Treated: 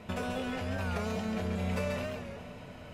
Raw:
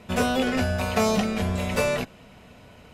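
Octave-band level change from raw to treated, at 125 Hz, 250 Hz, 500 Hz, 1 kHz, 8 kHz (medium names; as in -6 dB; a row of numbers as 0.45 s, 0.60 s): -6.5 dB, -9.0 dB, -10.5 dB, -11.0 dB, -15.0 dB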